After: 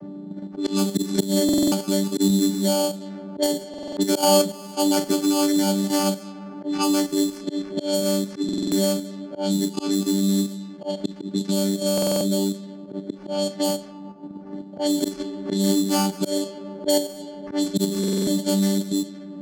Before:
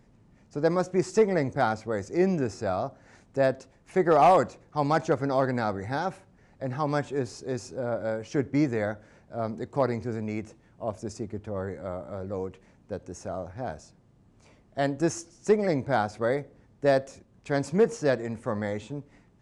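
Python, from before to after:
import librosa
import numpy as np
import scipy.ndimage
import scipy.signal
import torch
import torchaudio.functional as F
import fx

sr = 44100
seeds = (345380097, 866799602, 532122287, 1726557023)

p1 = fx.chord_vocoder(x, sr, chord='bare fifth', root=55)
p2 = fx.room_early_taps(p1, sr, ms=(17, 41), db=(-9.0, -11.0))
p3 = fx.rev_schroeder(p2, sr, rt60_s=2.5, comb_ms=31, drr_db=13.5)
p4 = fx.sample_hold(p3, sr, seeds[0], rate_hz=3800.0, jitter_pct=0)
p5 = fx.notch(p4, sr, hz=980.0, q=9.4)
p6 = fx.level_steps(p5, sr, step_db=19)
p7 = p5 + (p6 * librosa.db_to_amplitude(2.0))
p8 = fx.high_shelf_res(p7, sr, hz=3800.0, db=7.0, q=1.5)
p9 = fx.auto_swell(p8, sr, attack_ms=213.0)
p10 = fx.dynamic_eq(p9, sr, hz=190.0, q=1.3, threshold_db=-38.0, ratio=4.0, max_db=4)
p11 = fx.env_lowpass(p10, sr, base_hz=920.0, full_db=-22.5)
p12 = fx.buffer_glitch(p11, sr, at_s=(1.44, 3.69, 8.44, 11.93, 17.99), block=2048, repeats=5)
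p13 = fx.band_squash(p12, sr, depth_pct=70)
y = p13 * librosa.db_to_amplitude(2.0)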